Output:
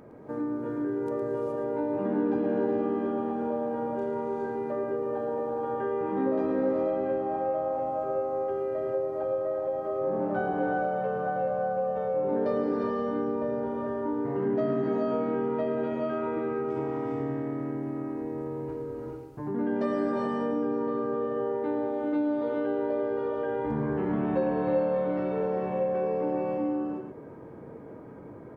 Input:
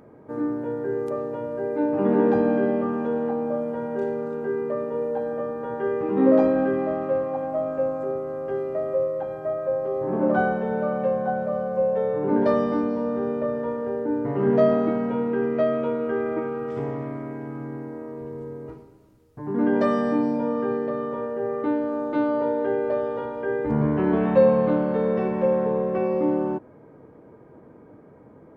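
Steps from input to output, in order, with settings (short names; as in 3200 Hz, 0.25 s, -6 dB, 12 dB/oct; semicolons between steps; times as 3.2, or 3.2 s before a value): echo 0.111 s -8.5 dB; non-linear reverb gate 0.45 s rising, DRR -1 dB; compressor 2:1, threshold -33 dBFS, peak gain reduction 13 dB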